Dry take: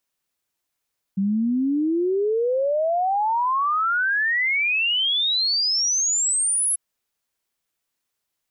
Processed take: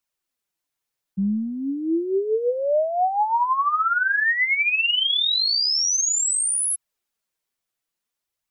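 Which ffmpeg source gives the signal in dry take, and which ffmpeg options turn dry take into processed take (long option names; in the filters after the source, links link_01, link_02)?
-f lavfi -i "aevalsrc='0.119*clip(min(t,5.59-t)/0.01,0,1)*sin(2*PI*190*5.59/log(11000/190)*(exp(log(11000/190)*t/5.59)-1))':duration=5.59:sample_rate=44100"
-filter_complex "[0:a]acrossover=split=110[link_01][link_02];[link_01]aeval=exprs='clip(val(0),-1,0.00251)':channel_layout=same[link_03];[link_02]dynaudnorm=framelen=370:gausssize=11:maxgain=4dB[link_04];[link_03][link_04]amix=inputs=2:normalize=0,flanger=delay=0.7:depth=8:regen=29:speed=0.59:shape=triangular"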